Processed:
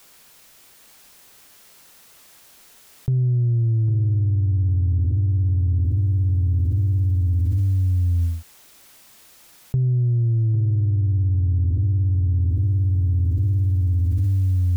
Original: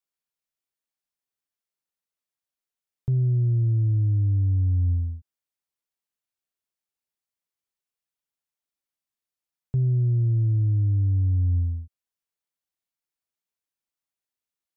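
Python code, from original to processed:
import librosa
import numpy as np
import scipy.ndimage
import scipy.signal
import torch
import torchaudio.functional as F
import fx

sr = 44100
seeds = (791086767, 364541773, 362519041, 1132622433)

p1 = x + fx.echo_feedback(x, sr, ms=803, feedback_pct=38, wet_db=-8.5, dry=0)
y = fx.env_flatten(p1, sr, amount_pct=100)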